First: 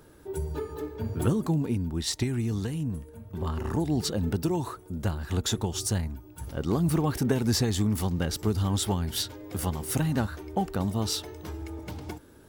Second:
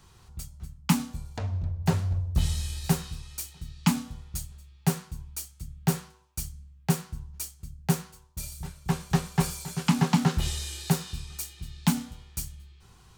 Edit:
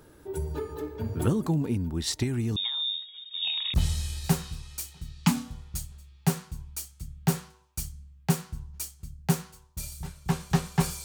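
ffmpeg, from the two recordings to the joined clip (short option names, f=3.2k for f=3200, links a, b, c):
-filter_complex "[0:a]asettb=1/sr,asplit=3[a][b][c];[a]atrim=end=2.564[d];[b]atrim=start=2.56:end=3.74,asetpts=PTS-STARTPTS,afade=t=in:d=0.004:c=qsin,afade=t=out:st=1.176:d=0.004:c=qsin,lowpass=f=3.2k:t=q:w=0.5098,lowpass=f=3.2k:t=q:w=0.6013,lowpass=f=3.2k:t=q:w=0.9,lowpass=f=3.2k:t=q:w=2.563,afreqshift=-3800[e];[c]atrim=start=3.736[f];[d][e]acrossfade=d=0.004:c1=hsin:c2=qsin[g];[g][f]acrossfade=d=0.004:c1=qsin:c2=hsin,apad=whole_dur=11.04,atrim=end=11.04,atrim=end=3.742[h];[1:a]atrim=start=2.338:end=9.64[i];[h][i]acrossfade=d=0.004:c1=hsin:c2=hsin"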